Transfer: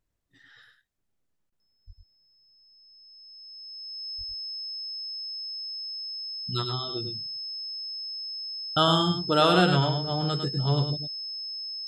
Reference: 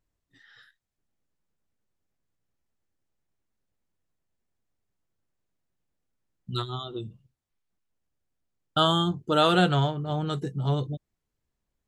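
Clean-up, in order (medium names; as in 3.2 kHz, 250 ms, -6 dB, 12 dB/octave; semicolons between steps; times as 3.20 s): band-stop 5.2 kHz, Q 30; 1.86–1.98 s: high-pass 140 Hz 24 dB/octave; 4.17–4.29 s: high-pass 140 Hz 24 dB/octave; interpolate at 1.50 s, 21 ms; inverse comb 104 ms -6.5 dB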